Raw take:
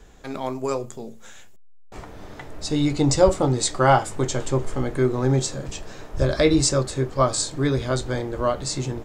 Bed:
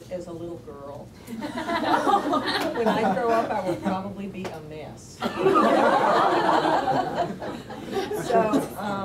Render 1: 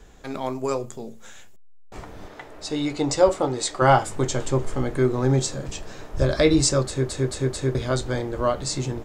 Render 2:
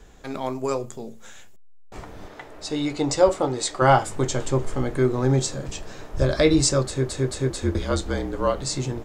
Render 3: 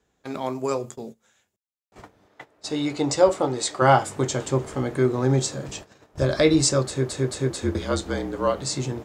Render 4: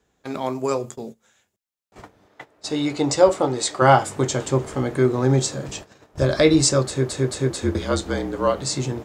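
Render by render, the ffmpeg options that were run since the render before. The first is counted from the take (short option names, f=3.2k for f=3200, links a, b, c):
-filter_complex "[0:a]asettb=1/sr,asplit=3[a][b][c];[a]atrim=end=2.284[d];[b]atrim=start=2.28:end=3.82,asetpts=PTS-STARTPTS,afade=t=in:d=0.004:c=qsin,afade=t=out:st=1.536:d=0.004:c=qsin,bass=f=250:g=-11,treble=f=4k:g=-4[e];[c]atrim=start=3.816[f];[d][e]acrossfade=d=0.004:c1=hsin:c2=qsin[g];[g][f]acrossfade=d=0.004:c1=qsin:c2=hsin,asplit=5[h][i][j][k][l];[h]atrim=end=7.092[m];[i]atrim=start=6.868:end=7.092[n];[j]atrim=start=6.868:end=7.092[o];[k]atrim=start=6.868:end=7.092[p];[l]atrim=start=7.748[q];[m][n]acrossfade=d=0.004:c1=hsin:c2=hsin[r];[r][o]acrossfade=d=0.004:c1=hsin:c2=hsin[s];[s][p]acrossfade=d=0.004:c1=hsin:c2=hsin[t];[t][q]acrossfade=d=0.004:c1=hsin:c2=hsin"
-filter_complex "[0:a]asettb=1/sr,asplit=3[a][b][c];[a]atrim=end=7.504[d];[b]atrim=start=7.5:end=8.59,asetpts=PTS-STARTPTS,afade=t=in:d=0.004:c=qsin,afade=t=out:st=1.086:d=0.004:c=qsin,afreqshift=-44[e];[c]atrim=start=8.586[f];[d][e]acrossfade=d=0.004:c1=hsin:c2=qsin[g];[g][f]acrossfade=d=0.004:c1=qsin:c2=hsin"
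-af "highpass=89,agate=range=-17dB:threshold=-38dB:ratio=16:detection=peak"
-af "volume=2.5dB,alimiter=limit=-2dB:level=0:latency=1"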